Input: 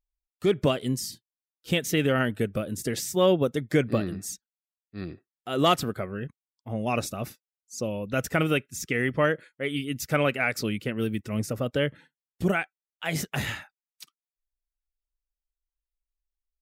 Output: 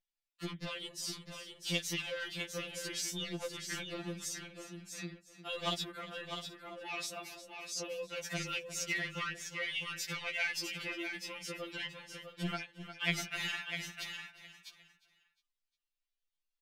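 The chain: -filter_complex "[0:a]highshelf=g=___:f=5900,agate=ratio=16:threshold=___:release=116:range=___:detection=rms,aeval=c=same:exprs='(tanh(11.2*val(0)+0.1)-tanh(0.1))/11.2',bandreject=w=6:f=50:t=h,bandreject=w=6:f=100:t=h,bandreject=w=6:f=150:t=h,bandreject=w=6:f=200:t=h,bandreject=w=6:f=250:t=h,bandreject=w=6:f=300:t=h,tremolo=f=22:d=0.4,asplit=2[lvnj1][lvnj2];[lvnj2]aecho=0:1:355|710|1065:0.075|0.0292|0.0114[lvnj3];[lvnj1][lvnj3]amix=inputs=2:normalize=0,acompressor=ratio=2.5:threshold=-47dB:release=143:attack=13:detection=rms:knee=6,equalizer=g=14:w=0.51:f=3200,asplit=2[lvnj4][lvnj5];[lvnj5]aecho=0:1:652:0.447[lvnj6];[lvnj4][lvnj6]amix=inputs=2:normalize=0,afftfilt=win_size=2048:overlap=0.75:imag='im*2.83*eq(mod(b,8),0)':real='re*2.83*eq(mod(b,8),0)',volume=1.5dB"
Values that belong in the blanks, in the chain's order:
-2, -49dB, -7dB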